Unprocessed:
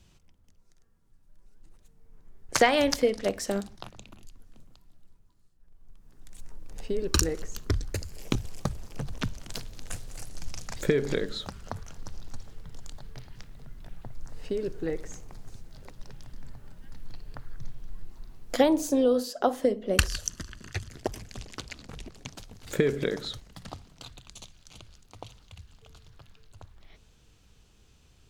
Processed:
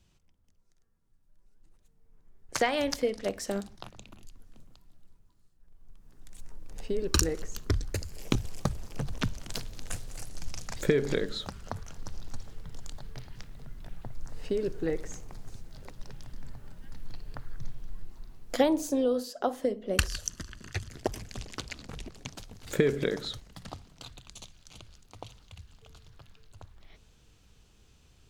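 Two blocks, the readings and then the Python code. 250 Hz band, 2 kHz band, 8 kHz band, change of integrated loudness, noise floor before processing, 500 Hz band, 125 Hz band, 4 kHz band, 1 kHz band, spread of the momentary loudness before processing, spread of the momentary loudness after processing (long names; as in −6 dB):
−2.5 dB, −3.0 dB, −2.0 dB, −3.0 dB, −60 dBFS, −2.5 dB, −0.5 dB, −2.5 dB, −4.0 dB, 24 LU, 22 LU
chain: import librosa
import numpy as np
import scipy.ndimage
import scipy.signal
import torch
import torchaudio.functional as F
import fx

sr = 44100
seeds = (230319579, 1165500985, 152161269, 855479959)

y = fx.rider(x, sr, range_db=4, speed_s=2.0)
y = F.gain(torch.from_numpy(y), -3.0).numpy()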